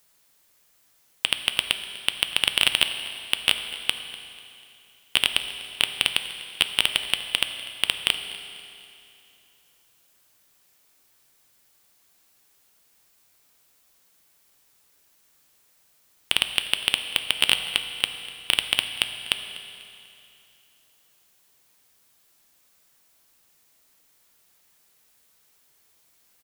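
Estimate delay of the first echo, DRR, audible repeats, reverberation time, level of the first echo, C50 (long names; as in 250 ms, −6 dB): 246 ms, 7.0 dB, 2, 2.7 s, −18.5 dB, 8.5 dB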